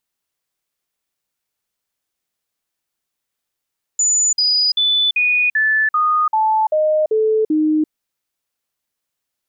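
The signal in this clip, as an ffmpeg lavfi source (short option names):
-f lavfi -i "aevalsrc='0.237*clip(min(mod(t,0.39),0.34-mod(t,0.39))/0.005,0,1)*sin(2*PI*6980*pow(2,-floor(t/0.39)/2)*mod(t,0.39))':d=3.9:s=44100"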